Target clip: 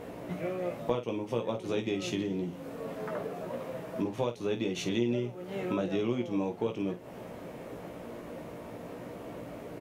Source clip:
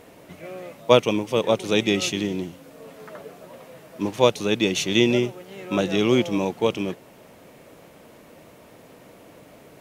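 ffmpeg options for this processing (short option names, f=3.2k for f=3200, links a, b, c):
-filter_complex "[0:a]highshelf=f=2k:g=-11,acompressor=threshold=-36dB:ratio=5,asplit=2[a][b];[b]aecho=0:1:17|51:0.562|0.299[c];[a][c]amix=inputs=2:normalize=0,volume=5dB"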